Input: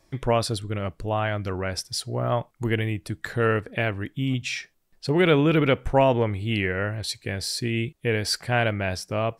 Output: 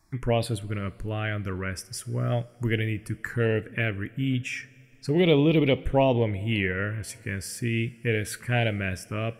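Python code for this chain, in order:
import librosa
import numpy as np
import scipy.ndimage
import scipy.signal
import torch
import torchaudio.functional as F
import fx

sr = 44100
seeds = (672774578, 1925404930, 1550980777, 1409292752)

y = fx.env_phaser(x, sr, low_hz=510.0, high_hz=1500.0, full_db=-15.5)
y = fx.rev_double_slope(y, sr, seeds[0], early_s=0.32, late_s=3.6, knee_db=-19, drr_db=14.5)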